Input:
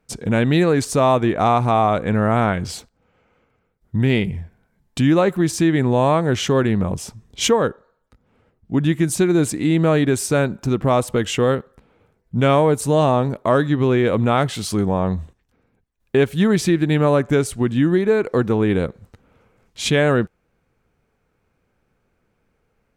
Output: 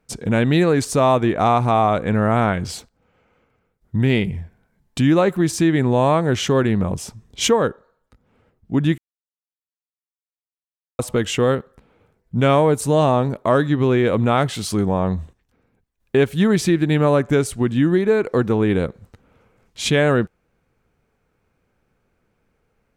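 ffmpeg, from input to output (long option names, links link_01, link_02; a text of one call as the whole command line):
ffmpeg -i in.wav -filter_complex "[0:a]asplit=3[link_01][link_02][link_03];[link_01]atrim=end=8.98,asetpts=PTS-STARTPTS,afade=type=out:start_time=8.976:duration=0.004:curve=hsin[link_04];[link_02]atrim=start=8.98:end=10.99,asetpts=PTS-STARTPTS,volume=0[link_05];[link_03]atrim=start=10.99,asetpts=PTS-STARTPTS,afade=type=in:duration=0.004:curve=hsin[link_06];[link_04][link_05][link_06]concat=n=3:v=0:a=1" out.wav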